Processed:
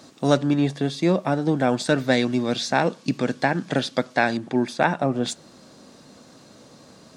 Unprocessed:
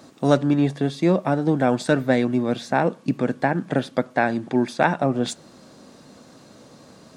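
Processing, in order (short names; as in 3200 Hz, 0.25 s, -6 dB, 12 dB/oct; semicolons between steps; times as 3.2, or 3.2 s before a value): bell 5000 Hz +6 dB 1.9 oct, from 1.98 s +13 dB, from 4.37 s +3 dB; gain -1.5 dB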